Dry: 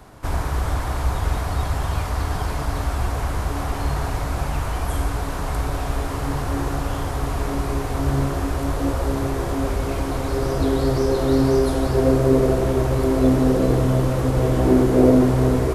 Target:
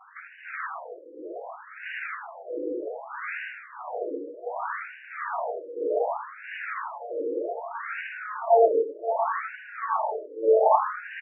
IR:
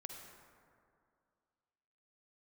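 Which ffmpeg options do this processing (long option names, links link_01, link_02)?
-filter_complex "[0:a]lowshelf=frequency=88:gain=-8,acrossover=split=440[link_01][link_02];[link_01]dynaudnorm=framelen=320:gausssize=17:maxgain=7dB[link_03];[link_03][link_02]amix=inputs=2:normalize=0,atempo=0.81,tremolo=f=0.87:d=0.92,aeval=exprs='0.355*(abs(mod(val(0)/0.355+3,4)-2)-1)':channel_layout=same,asplit=2[link_04][link_05];[link_05]adelay=20,volume=-8dB[link_06];[link_04][link_06]amix=inputs=2:normalize=0,asplit=2[link_07][link_08];[link_08]asplit=6[link_09][link_10][link_11][link_12][link_13][link_14];[link_09]adelay=138,afreqshift=110,volume=-8.5dB[link_15];[link_10]adelay=276,afreqshift=220,volume=-14.2dB[link_16];[link_11]adelay=414,afreqshift=330,volume=-19.9dB[link_17];[link_12]adelay=552,afreqshift=440,volume=-25.5dB[link_18];[link_13]adelay=690,afreqshift=550,volume=-31.2dB[link_19];[link_14]adelay=828,afreqshift=660,volume=-36.9dB[link_20];[link_15][link_16][link_17][link_18][link_19][link_20]amix=inputs=6:normalize=0[link_21];[link_07][link_21]amix=inputs=2:normalize=0,asetrate=76440,aresample=44100,afftfilt=real='re*between(b*sr/1024,390*pow(2100/390,0.5+0.5*sin(2*PI*0.65*pts/sr))/1.41,390*pow(2100/390,0.5+0.5*sin(2*PI*0.65*pts/sr))*1.41)':imag='im*between(b*sr/1024,390*pow(2100/390,0.5+0.5*sin(2*PI*0.65*pts/sr))/1.41,390*pow(2100/390,0.5+0.5*sin(2*PI*0.65*pts/sr))*1.41)':win_size=1024:overlap=0.75"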